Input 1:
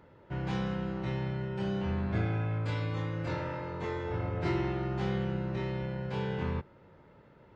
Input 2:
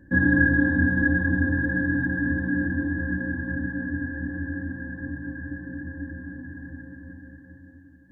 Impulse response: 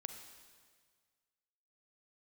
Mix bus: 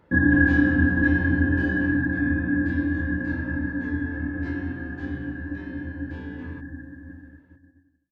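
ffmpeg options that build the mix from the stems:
-filter_complex "[0:a]volume=-1.5dB,afade=t=out:st=1.69:d=0.36:silence=0.375837[a];[1:a]agate=range=-33dB:threshold=-39dB:ratio=3:detection=peak,aecho=1:1:2.8:0.32,volume=1.5dB[b];[a][b]amix=inputs=2:normalize=0"

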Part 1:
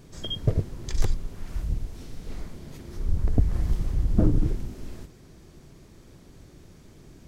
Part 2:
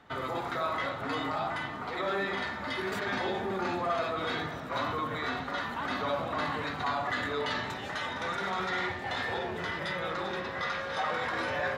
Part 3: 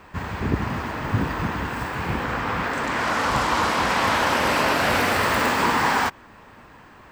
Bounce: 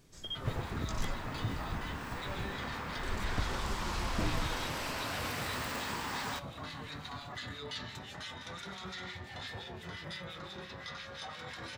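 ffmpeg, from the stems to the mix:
-filter_complex "[0:a]tiltshelf=f=970:g=-4,volume=-10.5dB[a];[1:a]acrossover=split=180|3000[b][c][d];[c]acompressor=threshold=-50dB:ratio=2.5[e];[b][e][d]amix=inputs=3:normalize=0,acrossover=split=1600[f][g];[f]aeval=exprs='val(0)*(1-0.7/2+0.7/2*cos(2*PI*5.8*n/s))':c=same[h];[g]aeval=exprs='val(0)*(1-0.7/2-0.7/2*cos(2*PI*5.8*n/s))':c=same[i];[h][i]amix=inputs=2:normalize=0,adelay=250,volume=1dB[j];[2:a]acrossover=split=130|3000[k][l][m];[l]acompressor=threshold=-30dB:ratio=2.5[n];[k][n][m]amix=inputs=3:normalize=0,adelay=300,volume=-11.5dB[o];[a][j][o]amix=inputs=3:normalize=0"

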